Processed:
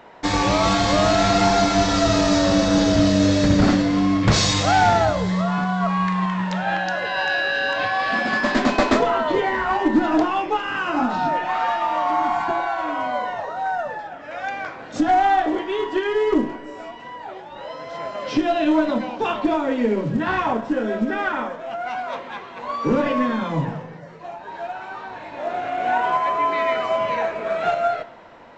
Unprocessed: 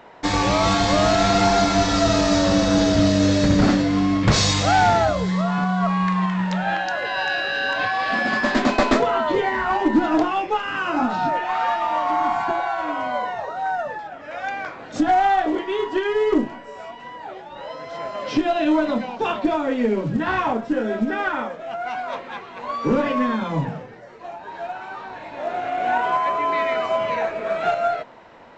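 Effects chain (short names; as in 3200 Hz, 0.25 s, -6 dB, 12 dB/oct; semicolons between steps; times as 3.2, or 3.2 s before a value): on a send: ripple EQ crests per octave 1.2, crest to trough 8 dB + reverb RT60 1.3 s, pre-delay 34 ms, DRR 12.5 dB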